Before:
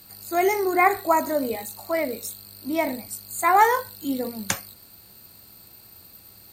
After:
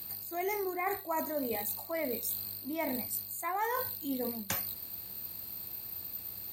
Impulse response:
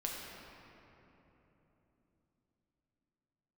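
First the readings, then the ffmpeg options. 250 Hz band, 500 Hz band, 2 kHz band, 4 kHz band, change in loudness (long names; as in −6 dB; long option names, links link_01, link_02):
−10.0 dB, −11.5 dB, −13.5 dB, −7.0 dB, −11.5 dB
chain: -af "equalizer=frequency=8400:width=0.59:gain=-9.5,bandreject=frequency=1400:width=12,crystalizer=i=2:c=0,areverse,acompressor=threshold=-32dB:ratio=6,areverse"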